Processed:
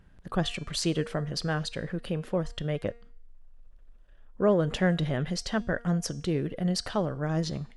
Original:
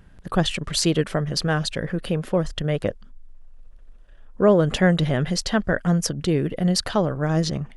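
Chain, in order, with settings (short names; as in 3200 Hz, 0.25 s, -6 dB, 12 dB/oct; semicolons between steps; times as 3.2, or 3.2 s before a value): high shelf 9100 Hz -5.5 dB; de-hum 235.3 Hz, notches 40; gain -7 dB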